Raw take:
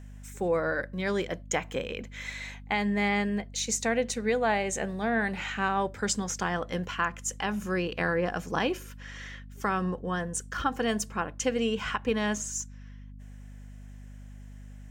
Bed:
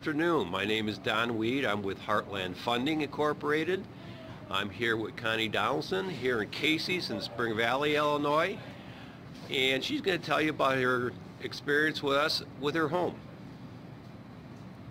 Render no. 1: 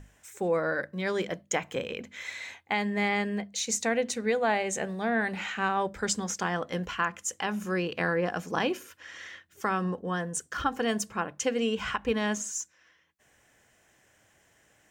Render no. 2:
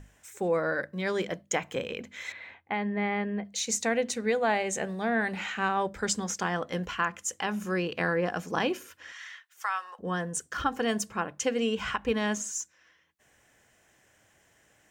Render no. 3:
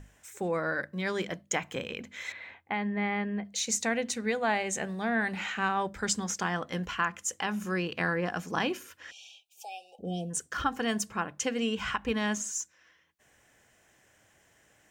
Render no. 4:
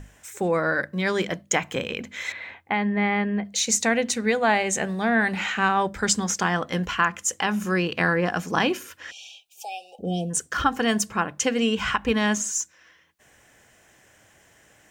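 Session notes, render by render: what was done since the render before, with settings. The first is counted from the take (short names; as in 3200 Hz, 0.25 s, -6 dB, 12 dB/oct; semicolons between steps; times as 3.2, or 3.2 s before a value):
notches 50/100/150/200/250 Hz
2.32–3.45 air absorption 420 m; 9.12–9.99 HPF 870 Hz 24 dB/oct
9.11–10.3 spectral delete 840–2300 Hz; dynamic EQ 500 Hz, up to -5 dB, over -42 dBFS, Q 1.5
gain +7.5 dB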